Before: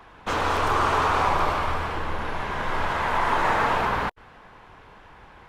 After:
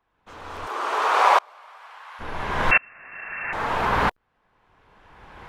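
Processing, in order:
0:00.65–0:02.19: high-pass filter 300 Hz → 900 Hz 24 dB per octave
0:02.71–0:03.53: voice inversion scrambler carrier 2,700 Hz
tremolo with a ramp in dB swelling 0.72 Hz, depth 35 dB
level +9 dB

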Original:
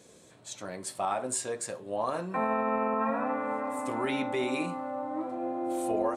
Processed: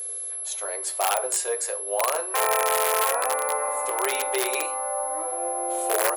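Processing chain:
steady tone 11,000 Hz −36 dBFS
wrap-around overflow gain 20.5 dB
elliptic high-pass filter 410 Hz, stop band 50 dB
level +7 dB

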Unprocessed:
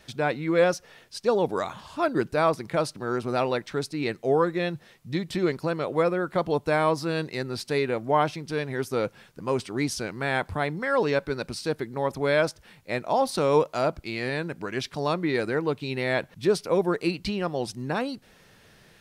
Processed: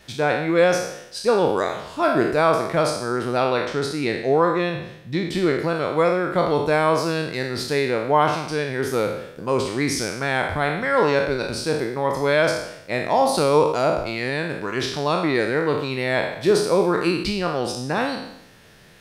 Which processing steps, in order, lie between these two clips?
peak hold with a decay on every bin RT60 0.79 s
0:03.37–0:05.76: high-shelf EQ 7,400 Hz −5.5 dB
level +3 dB

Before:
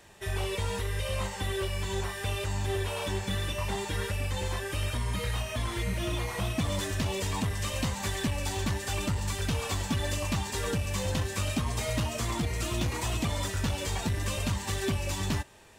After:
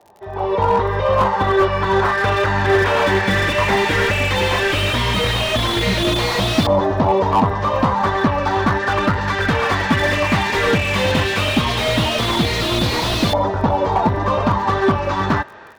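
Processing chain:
high-pass filter 240 Hz 6 dB per octave
flat-topped bell 4,700 Hz +8.5 dB 1.1 octaves
automatic gain control gain up to 15 dB
auto-filter low-pass saw up 0.15 Hz 800–4,600 Hz
surface crackle 48 per second −39 dBFS
slew-rate limiting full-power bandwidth 170 Hz
level +3.5 dB

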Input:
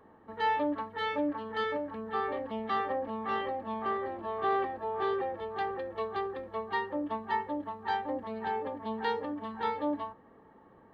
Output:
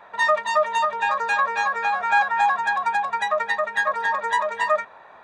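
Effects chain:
change of speed 2.09×
flat-topped bell 1,000 Hz +11 dB
level +3 dB

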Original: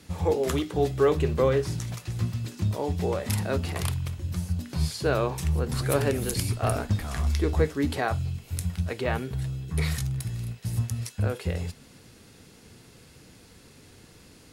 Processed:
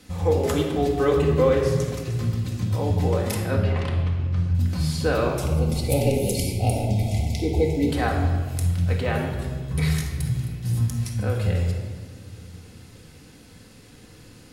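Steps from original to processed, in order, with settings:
0:03.36–0:04.55: low-pass filter 3,000 Hz 12 dB per octave
0:05.34–0:07.89: gain on a spectral selection 940–2,000 Hz −29 dB
convolution reverb RT60 1.6 s, pre-delay 4 ms, DRR −0.5 dB

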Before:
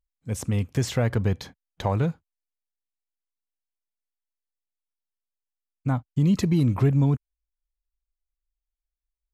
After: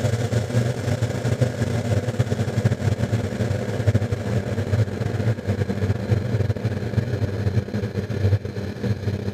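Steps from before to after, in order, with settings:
extreme stretch with random phases 29×, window 1.00 s, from 0:01.03
transient designer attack +8 dB, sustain −11 dB

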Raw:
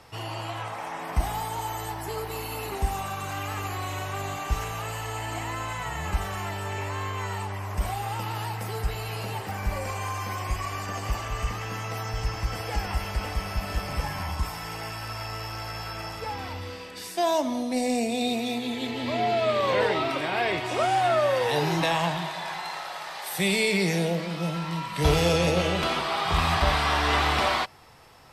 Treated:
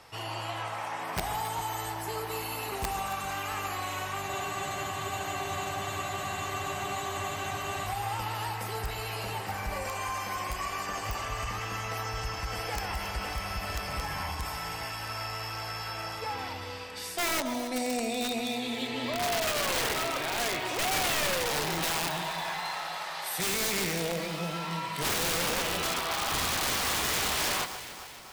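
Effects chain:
low-shelf EQ 420 Hz −7 dB
wrap-around overflow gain 21 dB
brickwall limiter −24 dBFS, peak gain reduction 3 dB
delay that swaps between a low-pass and a high-pass 137 ms, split 1,700 Hz, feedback 75%, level −10 dB
frozen spectrum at 0:04.30, 3.55 s

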